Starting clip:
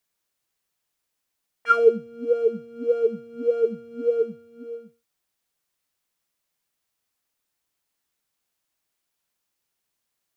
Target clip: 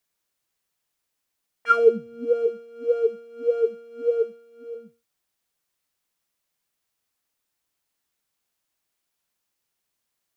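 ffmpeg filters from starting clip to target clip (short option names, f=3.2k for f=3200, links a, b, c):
-filter_complex "[0:a]asplit=3[a][b][c];[a]afade=t=out:st=2.46:d=0.02[d];[b]highpass=f=340:w=0.5412,highpass=f=340:w=1.3066,afade=t=in:st=2.46:d=0.02,afade=t=out:st=4.74:d=0.02[e];[c]afade=t=in:st=4.74:d=0.02[f];[d][e][f]amix=inputs=3:normalize=0"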